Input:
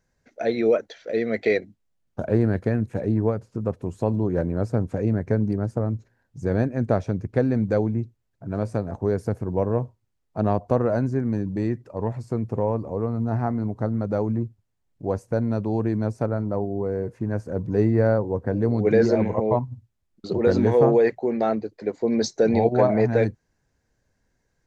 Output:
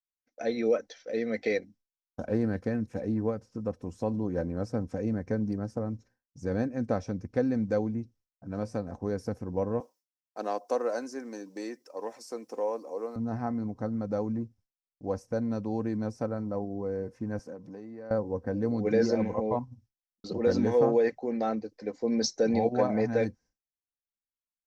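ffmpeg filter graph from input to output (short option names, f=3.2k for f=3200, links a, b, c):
-filter_complex "[0:a]asettb=1/sr,asplit=3[a][b][c];[a]atrim=end=9.804[d];[b]atrim=start=9.8:end=13.16,asetpts=PTS-STARTPTS,afade=t=in:d=0.004:c=qsin,afade=t=out:st=3.356:d=0.004:c=qsin,highpass=f=330:w=0.5412,highpass=f=330:w=1.3066,aemphasis=mode=production:type=75kf[e];[c]atrim=start=13.156[f];[d][e]acrossfade=d=0.004:c1=hsin:c2=qsin[g];[g][f]acrossfade=d=0.004:c1=qsin:c2=hsin,asettb=1/sr,asplit=3[h][i][j];[h]atrim=end=17.394[k];[i]atrim=start=17.39:end=18.11,asetpts=PTS-STARTPTS,afade=t=in:d=0.004:c=qsin,afade=t=out:st=0.716:d=0.004:c=qsin,acompressor=threshold=-29dB:ratio=12:attack=3.2:release=140:knee=1:detection=peak,highpass=190[l];[j]atrim=start=18.106[m];[k][l]acrossfade=d=0.004:c1=hsin:c2=qsin[n];[n][m]acrossfade=d=0.004:c1=qsin:c2=hsin,agate=range=-33dB:threshold=-44dB:ratio=3:detection=peak,equalizer=f=5.5k:t=o:w=0.32:g=12.5,aecho=1:1:3.9:0.45,volume=-7.5dB"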